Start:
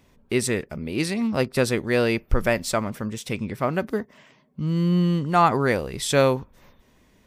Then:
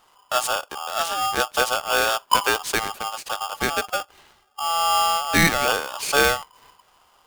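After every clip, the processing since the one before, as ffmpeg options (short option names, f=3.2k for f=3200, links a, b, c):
-af "aeval=exprs='val(0)*sgn(sin(2*PI*1000*n/s))':c=same"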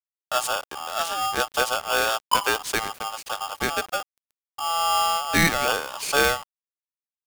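-af "aeval=exprs='val(0)*gte(abs(val(0)),0.0106)':c=same,volume=-2dB"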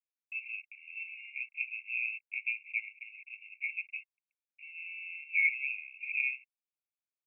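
-af "acrusher=bits=3:mode=log:mix=0:aa=0.000001,asuperpass=centerf=2400:order=20:qfactor=4.1"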